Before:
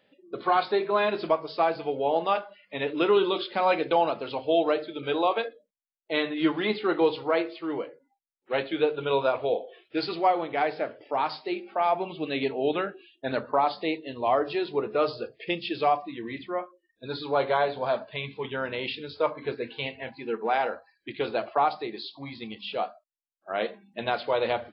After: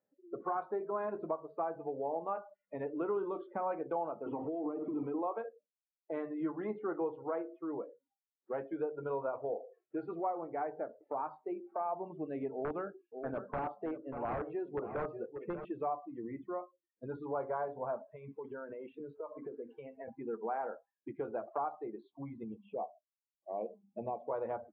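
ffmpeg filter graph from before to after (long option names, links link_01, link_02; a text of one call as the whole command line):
ffmpeg -i in.wav -filter_complex "[0:a]asettb=1/sr,asplit=3[link_01][link_02][link_03];[link_01]atrim=end=4.264[link_04];[link_02]atrim=start=4.26:end=5.22,asetpts=PTS-STARTPTS,afade=type=in:duration=0.004:curve=qsin,afade=type=out:start_time=0.956:duration=0.004:curve=qsin,aeval=exprs='val(0)+0.5*0.0376*sgn(val(0))':channel_layout=same,acompressor=threshold=-24dB:ratio=4:attack=3.2:release=140:knee=1:detection=peak,highpass=120,equalizer=frequency=290:width_type=q:width=4:gain=9,equalizer=frequency=590:width_type=q:width=4:gain=-9,equalizer=frequency=1600:width_type=q:width=4:gain=-10,lowpass=frequency=3000:width=0.5412,lowpass=frequency=3000:width=1.3066[link_05];[link_03]atrim=start=5.216[link_06];[link_04][link_05]acrossfade=duration=0.004:curve1=hsin:curve2=qsin[link_07];[link_07][link_06]acrossfade=duration=0.004:curve1=qsin:curve2=hsin,asettb=1/sr,asplit=3[link_08][link_09][link_10];[link_08]atrim=end=12.534[link_11];[link_09]atrim=start=12.53:end=15.65,asetpts=PTS-STARTPTS,afade=type=in:duration=0.004:curve=qsin,afade=type=out:start_time=3.116:duration=0.004:curve=qsin,aeval=exprs='(mod(7.08*val(0)+1,2)-1)/7.08':channel_layout=same,aecho=1:1:588:0.266,atrim=end_sample=137592[link_12];[link_10]atrim=start=15.646[link_13];[link_11][link_12]acrossfade=duration=0.004:curve1=hsin:curve2=qsin[link_14];[link_14][link_13]acrossfade=duration=0.004:curve1=qsin:curve2=hsin,asettb=1/sr,asplit=3[link_15][link_16][link_17];[link_15]atrim=end=18.004[link_18];[link_16]atrim=start=18:end=20.08,asetpts=PTS-STARTPTS,afade=type=in:duration=0.004:curve=qsin,afade=type=out:start_time=2.076:duration=0.004:curve=qsin,highpass=160,acompressor=threshold=-36dB:ratio=4:attack=3.2:release=140:knee=1:detection=peak[link_19];[link_17]atrim=start=20.076[link_20];[link_18][link_19]acrossfade=duration=0.004:curve1=hsin:curve2=qsin[link_21];[link_21][link_20]acrossfade=duration=0.004:curve1=qsin:curve2=hsin,asettb=1/sr,asplit=3[link_22][link_23][link_24];[link_22]atrim=end=22.434[link_25];[link_23]atrim=start=22.43:end=24.31,asetpts=PTS-STARTPTS,afade=type=in:duration=0.004:curve=qsin,afade=type=out:start_time=1.876:duration=0.004:curve=qsin,asuperstop=centerf=1600:order=20:qfactor=1.5,highshelf=frequency=3000:gain=-5.5,acrossover=split=4100[link_26][link_27];[link_27]acompressor=threshold=-60dB:ratio=4:attack=1:release=60[link_28];[link_26][link_28]amix=inputs=2:normalize=0[link_29];[link_24]atrim=start=24.306[link_30];[link_25][link_29]acrossfade=duration=0.004:curve1=hsin:curve2=qsin[link_31];[link_31][link_30]acrossfade=duration=0.004:curve1=qsin:curve2=hsin,afftdn=noise_reduction=19:noise_floor=-37,lowpass=frequency=1400:width=0.5412,lowpass=frequency=1400:width=1.3066,acompressor=threshold=-43dB:ratio=2" out.wav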